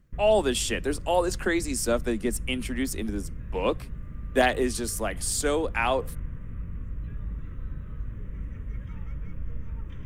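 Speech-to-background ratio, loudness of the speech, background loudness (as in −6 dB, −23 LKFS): 12.0 dB, −27.0 LKFS, −39.0 LKFS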